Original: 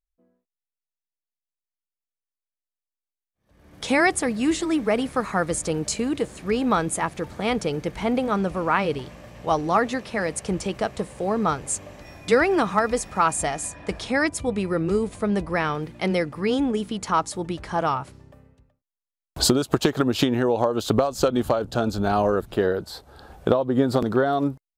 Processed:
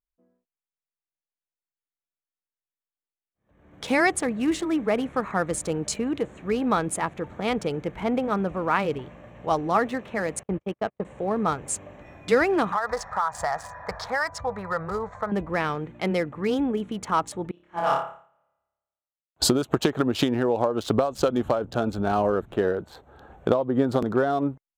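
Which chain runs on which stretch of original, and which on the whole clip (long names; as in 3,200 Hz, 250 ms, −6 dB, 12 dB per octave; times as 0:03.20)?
0:10.43–0:11.05: noise gate −28 dBFS, range −42 dB + high-frequency loss of the air 150 metres
0:12.72–0:15.32: drawn EQ curve 120 Hz 0 dB, 330 Hz −18 dB, 470 Hz −1 dB, 950 Hz +11 dB, 1,900 Hz +7 dB, 2,800 Hz −16 dB, 4,800 Hz +9 dB, 9,700 Hz −13 dB + downward compressor, threshold −19 dBFS
0:17.51–0:19.42: low-shelf EQ 330 Hz −11 dB + flutter between parallel walls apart 4.9 metres, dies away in 1.2 s + expander for the loud parts 2.5 to 1, over −36 dBFS
whole clip: adaptive Wiener filter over 9 samples; low-shelf EQ 65 Hz −7 dB; level −1.5 dB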